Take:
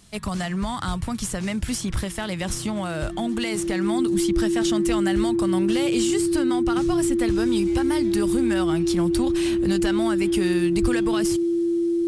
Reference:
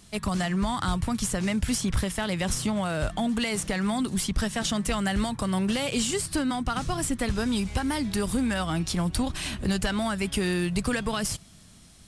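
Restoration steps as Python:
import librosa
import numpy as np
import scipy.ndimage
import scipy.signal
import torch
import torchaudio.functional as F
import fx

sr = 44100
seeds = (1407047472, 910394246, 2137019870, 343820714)

y = fx.notch(x, sr, hz=340.0, q=30.0)
y = fx.fix_deplosive(y, sr, at_s=(10.81,))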